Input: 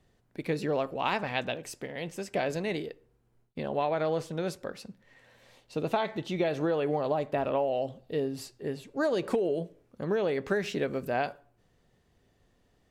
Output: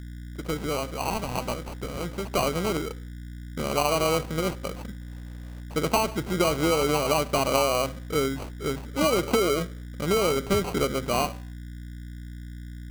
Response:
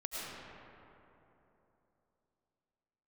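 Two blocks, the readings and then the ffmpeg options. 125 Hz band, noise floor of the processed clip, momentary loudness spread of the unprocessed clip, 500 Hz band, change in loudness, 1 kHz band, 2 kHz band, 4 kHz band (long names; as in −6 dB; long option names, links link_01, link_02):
+7.0 dB, −39 dBFS, 11 LU, +3.5 dB, +5.0 dB, +6.0 dB, +4.0 dB, +10.5 dB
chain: -af "bandreject=frequency=258.4:width_type=h:width=4,bandreject=frequency=516.8:width_type=h:width=4,bandreject=frequency=775.2:width_type=h:width=4,bandreject=frequency=1033.6:width_type=h:width=4,bandreject=frequency=1292:width_type=h:width=4,bandreject=frequency=1550.4:width_type=h:width=4,bandreject=frequency=1808.8:width_type=h:width=4,bandreject=frequency=2067.2:width_type=h:width=4,bandreject=frequency=2325.6:width_type=h:width=4,agate=range=-33dB:threshold=-56dB:ratio=3:detection=peak,dynaudnorm=framelen=340:gausssize=9:maxgain=5dB,aeval=exprs='val(0)+0.0141*(sin(2*PI*60*n/s)+sin(2*PI*2*60*n/s)/2+sin(2*PI*3*60*n/s)/3+sin(2*PI*4*60*n/s)/4+sin(2*PI*5*60*n/s)/5)':channel_layout=same,acrusher=samples=25:mix=1:aa=0.000001"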